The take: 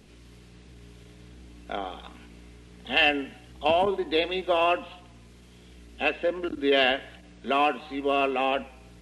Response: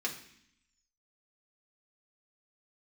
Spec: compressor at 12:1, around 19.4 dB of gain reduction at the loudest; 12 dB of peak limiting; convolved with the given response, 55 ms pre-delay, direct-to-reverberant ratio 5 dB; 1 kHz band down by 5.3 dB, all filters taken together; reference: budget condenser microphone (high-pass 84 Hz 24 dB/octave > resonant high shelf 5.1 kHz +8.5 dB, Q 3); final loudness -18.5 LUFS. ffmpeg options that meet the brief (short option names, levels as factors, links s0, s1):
-filter_complex "[0:a]equalizer=f=1000:t=o:g=-8,acompressor=threshold=0.0112:ratio=12,alimiter=level_in=4.73:limit=0.0631:level=0:latency=1,volume=0.211,asplit=2[s0][s1];[1:a]atrim=start_sample=2205,adelay=55[s2];[s1][s2]afir=irnorm=-1:irlink=0,volume=0.355[s3];[s0][s3]amix=inputs=2:normalize=0,highpass=f=84:w=0.5412,highpass=f=84:w=1.3066,highshelf=f=5100:t=q:w=3:g=8.5,volume=29.9"